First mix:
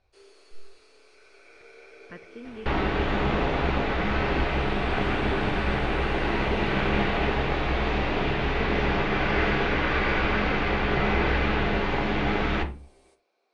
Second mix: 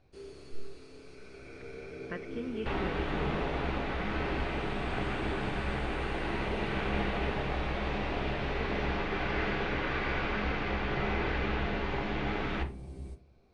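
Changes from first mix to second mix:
speech +4.0 dB; first sound: remove Bessel high-pass 620 Hz, order 4; second sound -8.0 dB

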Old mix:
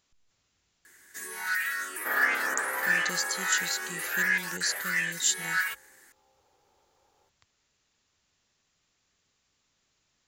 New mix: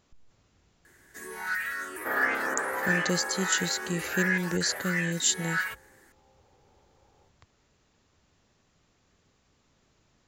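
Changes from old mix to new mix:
speech +7.0 dB; master: add tilt shelf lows +7 dB, about 1300 Hz

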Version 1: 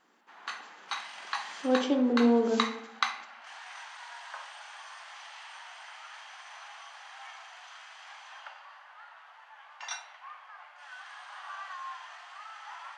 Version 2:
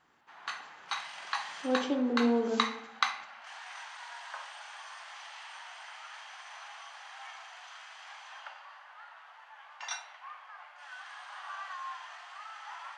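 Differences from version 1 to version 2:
speech -4.0 dB; master: remove brick-wall FIR high-pass 170 Hz

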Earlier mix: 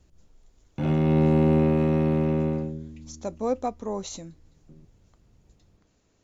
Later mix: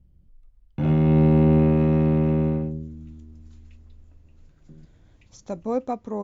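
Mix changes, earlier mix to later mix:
speech: entry +2.25 s; master: add tone controls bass +5 dB, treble -7 dB

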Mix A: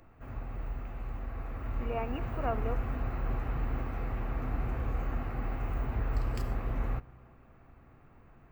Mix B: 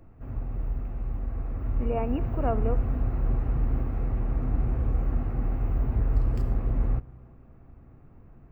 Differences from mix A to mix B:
speech +4.5 dB; master: add tilt shelf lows +7.5 dB, about 680 Hz

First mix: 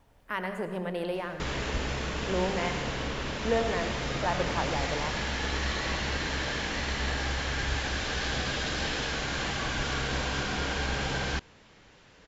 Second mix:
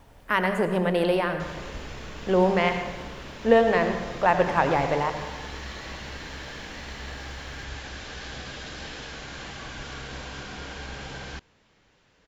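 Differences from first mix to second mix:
speech +9.5 dB; background -7.0 dB

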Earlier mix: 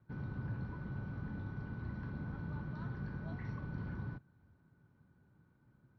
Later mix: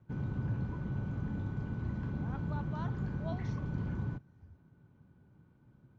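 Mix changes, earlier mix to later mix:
speech +9.0 dB; master: remove rippled Chebyshev low-pass 5800 Hz, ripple 6 dB

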